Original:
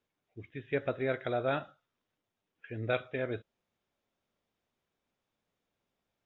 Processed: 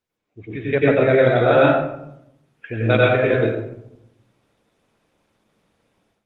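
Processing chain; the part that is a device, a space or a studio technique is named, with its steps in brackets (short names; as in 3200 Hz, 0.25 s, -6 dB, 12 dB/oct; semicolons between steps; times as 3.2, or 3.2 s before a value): speakerphone in a meeting room (reverb RT60 0.75 s, pre-delay 88 ms, DRR -4.5 dB; AGC gain up to 14 dB; Opus 24 kbps 48000 Hz)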